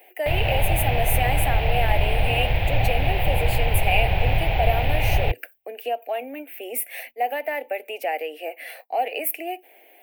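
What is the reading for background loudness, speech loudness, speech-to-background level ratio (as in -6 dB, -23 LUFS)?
-23.5 LUFS, -27.5 LUFS, -4.0 dB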